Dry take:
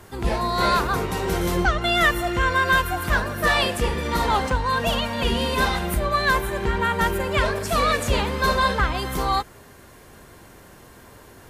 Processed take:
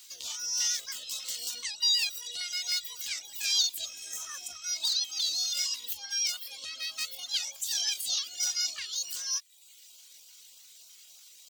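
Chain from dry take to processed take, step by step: reverb removal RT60 0.71 s; high-order bell 3.5 kHz +15 dB; band-stop 1 kHz, Q 14; LFO notch saw up 3.3 Hz 320–1600 Hz; in parallel at 0 dB: compression, threshold -31 dBFS, peak gain reduction 22.5 dB; on the sum: differentiator; spectral replace 3.90–4.59 s, 1.4–4.3 kHz after; pitch shift +5.5 st; trim -8 dB

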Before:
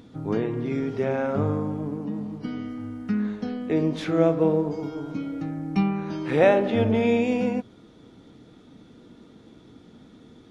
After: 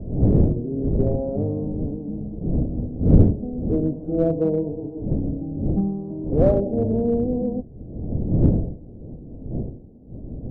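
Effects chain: wind noise 190 Hz -23 dBFS; steep low-pass 670 Hz 36 dB/octave; in parallel at -11 dB: hard clipper -15 dBFS, distortion -8 dB; on the sum: trim -2 dB

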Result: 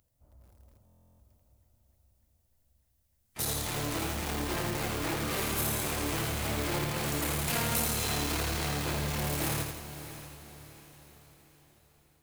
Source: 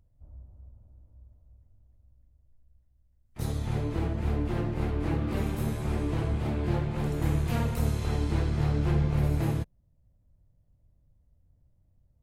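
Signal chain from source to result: in parallel at -11.5 dB: bit crusher 5-bit; on the sum: saturation -24.5 dBFS, distortion -11 dB; peak limiter -27.5 dBFS, peak gain reduction 3 dB; tilt EQ +3.5 dB/octave; on a send: echo that smears into a reverb 610 ms, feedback 47%, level -12.5 dB; on the sum: level rider gain up to 3.5 dB; buffer glitch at 0.85 s, samples 1024, times 14; bit-crushed delay 83 ms, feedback 55%, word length 10-bit, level -5 dB; trim +1.5 dB

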